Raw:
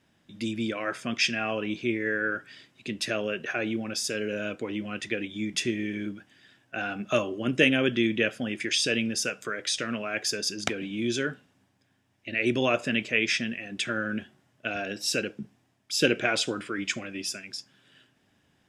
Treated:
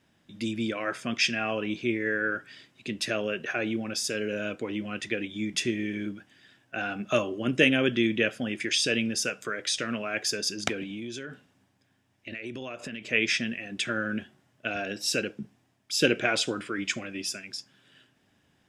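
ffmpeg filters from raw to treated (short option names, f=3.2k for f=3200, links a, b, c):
-filter_complex "[0:a]asettb=1/sr,asplit=3[a][b][c];[a]atrim=end=10.834[d];[b]atrim=start=10.83:end=13.11,asetpts=PTS-STARTPTS,afade=t=in:d=0.004:c=qsin,afade=t=out:st=2.276:d=0.004:c=qsin,acompressor=threshold=-33dB:ratio=12:attack=3.2:release=140:knee=1:detection=peak[e];[c]atrim=start=13.106[f];[d][e]acrossfade=d=0.004:c1=hsin:c2=qsin[g];[g][f]acrossfade=d=0.004:c1=qsin:c2=hsin"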